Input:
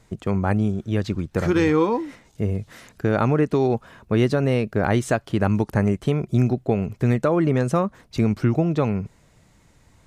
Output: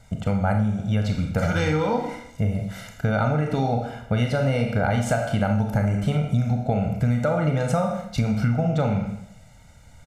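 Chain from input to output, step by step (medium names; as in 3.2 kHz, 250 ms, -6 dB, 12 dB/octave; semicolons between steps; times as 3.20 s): comb 1.4 ms, depth 97%; Schroeder reverb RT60 0.67 s, combs from 26 ms, DRR 3 dB; compression, threshold -18 dBFS, peak gain reduction 9 dB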